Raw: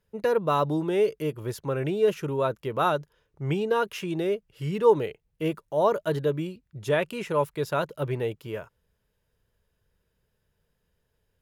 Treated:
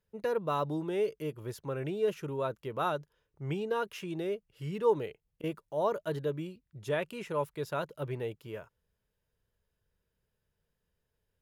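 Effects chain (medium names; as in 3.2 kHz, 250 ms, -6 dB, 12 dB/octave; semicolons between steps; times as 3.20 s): 4.83–5.44 s: slow attack 119 ms; trim -7.5 dB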